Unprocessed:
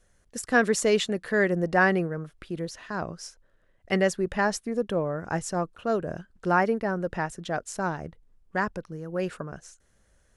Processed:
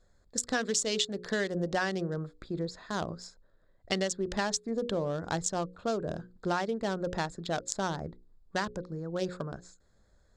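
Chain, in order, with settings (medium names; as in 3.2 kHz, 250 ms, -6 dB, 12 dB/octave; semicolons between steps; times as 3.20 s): local Wiener filter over 15 samples; high-order bell 5 kHz +14.5 dB; hum notches 60/120/180/240/300/360/420/480/540 Hz; compression 6:1, threshold -27 dBFS, peak gain reduction 12.5 dB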